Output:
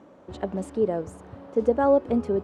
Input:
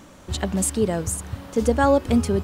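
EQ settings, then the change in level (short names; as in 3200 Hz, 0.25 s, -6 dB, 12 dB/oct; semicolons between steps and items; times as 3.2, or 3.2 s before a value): band-pass 480 Hz, Q 1; 0.0 dB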